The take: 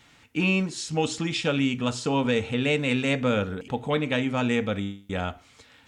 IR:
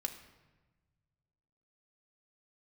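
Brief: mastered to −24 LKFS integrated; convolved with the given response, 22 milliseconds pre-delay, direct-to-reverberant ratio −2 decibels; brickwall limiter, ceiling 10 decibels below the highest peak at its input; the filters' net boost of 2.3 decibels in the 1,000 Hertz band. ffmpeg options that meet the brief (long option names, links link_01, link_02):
-filter_complex "[0:a]equalizer=frequency=1000:width_type=o:gain=3,alimiter=limit=-21.5dB:level=0:latency=1,asplit=2[link_01][link_02];[1:a]atrim=start_sample=2205,adelay=22[link_03];[link_02][link_03]afir=irnorm=-1:irlink=0,volume=2dB[link_04];[link_01][link_04]amix=inputs=2:normalize=0,volume=2dB"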